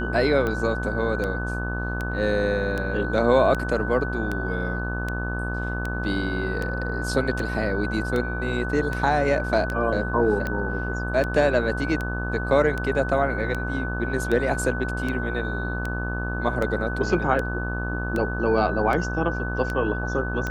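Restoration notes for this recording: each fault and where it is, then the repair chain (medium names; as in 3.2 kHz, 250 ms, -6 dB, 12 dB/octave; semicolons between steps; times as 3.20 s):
buzz 60 Hz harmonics 28 -29 dBFS
tick 78 rpm -15 dBFS
whine 1.5 kHz -31 dBFS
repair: de-click; band-stop 1.5 kHz, Q 30; de-hum 60 Hz, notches 28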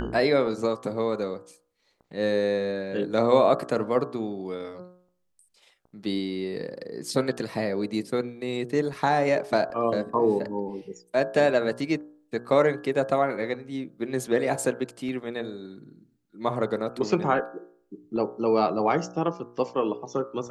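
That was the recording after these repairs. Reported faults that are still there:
nothing left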